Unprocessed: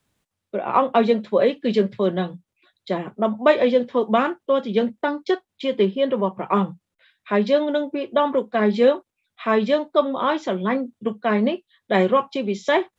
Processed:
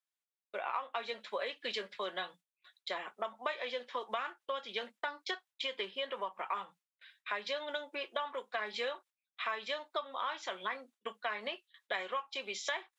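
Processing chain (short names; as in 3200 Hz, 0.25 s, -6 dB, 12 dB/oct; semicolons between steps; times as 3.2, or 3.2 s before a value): HPF 1200 Hz 12 dB/oct; gate with hold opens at -49 dBFS; compressor 6:1, threshold -34 dBFS, peak gain reduction 16 dB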